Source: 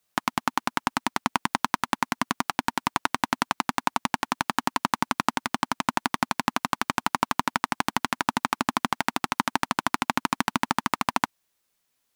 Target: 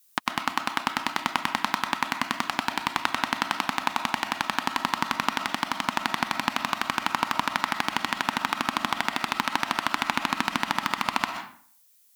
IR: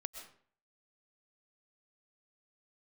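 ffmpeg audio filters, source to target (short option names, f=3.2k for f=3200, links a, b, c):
-filter_complex "[0:a]crystalizer=i=5.5:c=0,acrossover=split=4100[a][b];[b]acompressor=threshold=-31dB:ratio=4:attack=1:release=60[c];[a][c]amix=inputs=2:normalize=0[d];[1:a]atrim=start_sample=2205[e];[d][e]afir=irnorm=-1:irlink=0,volume=-1dB"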